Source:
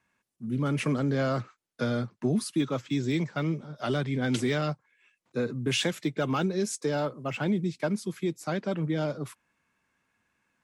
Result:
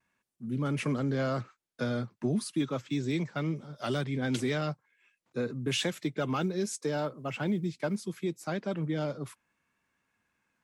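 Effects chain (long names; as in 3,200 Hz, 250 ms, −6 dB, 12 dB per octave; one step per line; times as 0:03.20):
0:03.56–0:04.04: high-shelf EQ 5,900 Hz +9.5 dB
0:06.40–0:07.99: floating-point word with a short mantissa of 6 bits
pitch vibrato 0.74 Hz 29 cents
level −3 dB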